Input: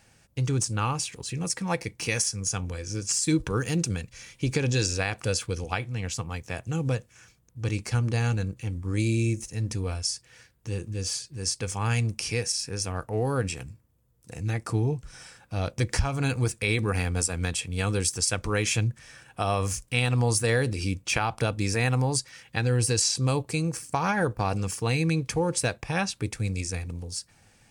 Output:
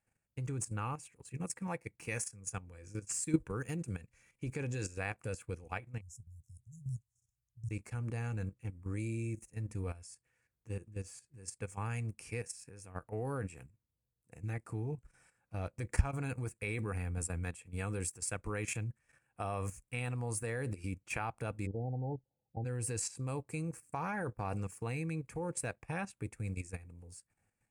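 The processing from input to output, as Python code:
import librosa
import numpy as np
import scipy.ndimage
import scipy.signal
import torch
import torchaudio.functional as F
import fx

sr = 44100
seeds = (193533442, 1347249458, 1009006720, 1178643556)

y = fx.brickwall_bandstop(x, sr, low_hz=150.0, high_hz=5100.0, at=(6.01, 7.71))
y = fx.low_shelf(y, sr, hz=220.0, db=7.0, at=(16.93, 17.43), fade=0.02)
y = fx.cheby1_lowpass(y, sr, hz=870.0, order=10, at=(21.65, 22.64), fade=0.02)
y = fx.band_shelf(y, sr, hz=4300.0, db=-11.5, octaves=1.2)
y = fx.level_steps(y, sr, step_db=10)
y = fx.upward_expand(y, sr, threshold_db=-52.0, expansion=1.5)
y = y * 10.0 ** (-2.0 / 20.0)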